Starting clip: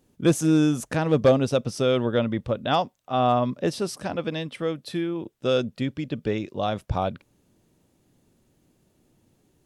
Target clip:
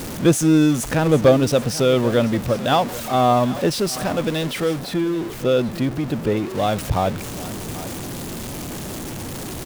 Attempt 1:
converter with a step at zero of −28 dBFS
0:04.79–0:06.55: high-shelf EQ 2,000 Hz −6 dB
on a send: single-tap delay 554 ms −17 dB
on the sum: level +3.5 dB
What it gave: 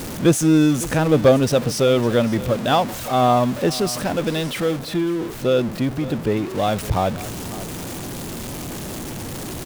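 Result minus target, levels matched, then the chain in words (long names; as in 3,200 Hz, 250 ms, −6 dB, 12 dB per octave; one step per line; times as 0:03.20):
echo 231 ms early
converter with a step at zero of −28 dBFS
0:04.79–0:06.55: high-shelf EQ 2,000 Hz −6 dB
on a send: single-tap delay 785 ms −17 dB
on the sum: level +3.5 dB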